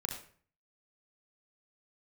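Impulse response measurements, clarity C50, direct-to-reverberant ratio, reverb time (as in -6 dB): 5.0 dB, 1.0 dB, 0.45 s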